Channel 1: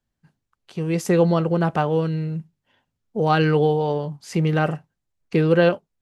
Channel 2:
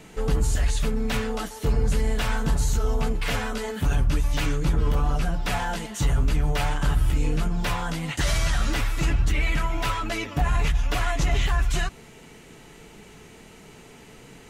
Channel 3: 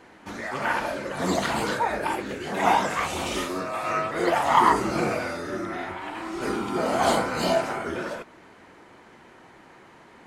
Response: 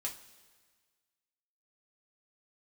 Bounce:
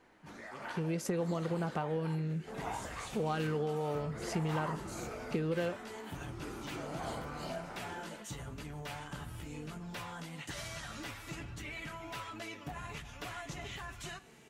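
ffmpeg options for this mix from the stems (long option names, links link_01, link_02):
-filter_complex "[0:a]acompressor=threshold=-21dB:ratio=6,volume=-0.5dB[link_01];[1:a]highpass=120,adelay=2300,volume=-13dB,asplit=2[link_02][link_03];[link_03]volume=-7dB[link_04];[2:a]volume=-13.5dB[link_05];[3:a]atrim=start_sample=2205[link_06];[link_04][link_06]afir=irnorm=-1:irlink=0[link_07];[link_01][link_02][link_05][link_07]amix=inputs=4:normalize=0,acompressor=threshold=-47dB:ratio=1.5"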